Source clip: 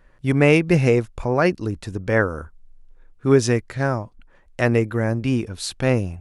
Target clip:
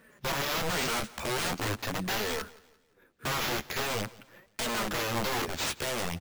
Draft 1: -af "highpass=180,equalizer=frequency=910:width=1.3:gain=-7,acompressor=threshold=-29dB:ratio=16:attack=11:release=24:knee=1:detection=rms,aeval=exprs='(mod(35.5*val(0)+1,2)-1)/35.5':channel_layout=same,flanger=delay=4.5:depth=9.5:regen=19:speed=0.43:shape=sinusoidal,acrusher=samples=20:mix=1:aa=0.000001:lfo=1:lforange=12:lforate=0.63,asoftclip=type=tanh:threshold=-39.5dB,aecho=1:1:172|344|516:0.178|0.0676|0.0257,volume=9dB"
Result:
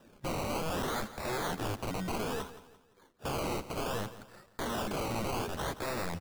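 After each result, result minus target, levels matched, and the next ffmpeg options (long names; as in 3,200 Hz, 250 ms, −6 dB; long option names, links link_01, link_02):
soft clipping: distortion +16 dB; sample-and-hold swept by an LFO: distortion +10 dB; echo-to-direct +6.5 dB
-af "highpass=180,equalizer=frequency=910:width=1.3:gain=-7,acompressor=threshold=-29dB:ratio=16:attack=11:release=24:knee=1:detection=rms,aeval=exprs='(mod(35.5*val(0)+1,2)-1)/35.5':channel_layout=same,flanger=delay=4.5:depth=9.5:regen=19:speed=0.43:shape=sinusoidal,acrusher=samples=20:mix=1:aa=0.000001:lfo=1:lforange=12:lforate=0.63,asoftclip=type=tanh:threshold=-28.5dB,aecho=1:1:172|344|516:0.178|0.0676|0.0257,volume=9dB"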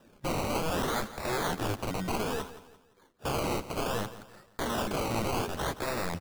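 sample-and-hold swept by an LFO: distortion +10 dB; echo-to-direct +6.5 dB
-af "highpass=180,equalizer=frequency=910:width=1.3:gain=-7,acompressor=threshold=-29dB:ratio=16:attack=11:release=24:knee=1:detection=rms,aeval=exprs='(mod(35.5*val(0)+1,2)-1)/35.5':channel_layout=same,flanger=delay=4.5:depth=9.5:regen=19:speed=0.43:shape=sinusoidal,acrusher=samples=4:mix=1:aa=0.000001:lfo=1:lforange=2.4:lforate=0.63,asoftclip=type=tanh:threshold=-28.5dB,aecho=1:1:172|344|516:0.178|0.0676|0.0257,volume=9dB"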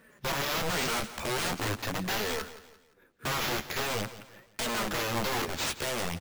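echo-to-direct +6.5 dB
-af "highpass=180,equalizer=frequency=910:width=1.3:gain=-7,acompressor=threshold=-29dB:ratio=16:attack=11:release=24:knee=1:detection=rms,aeval=exprs='(mod(35.5*val(0)+1,2)-1)/35.5':channel_layout=same,flanger=delay=4.5:depth=9.5:regen=19:speed=0.43:shape=sinusoidal,acrusher=samples=4:mix=1:aa=0.000001:lfo=1:lforange=2.4:lforate=0.63,asoftclip=type=tanh:threshold=-28.5dB,aecho=1:1:172|344|516:0.0841|0.032|0.0121,volume=9dB"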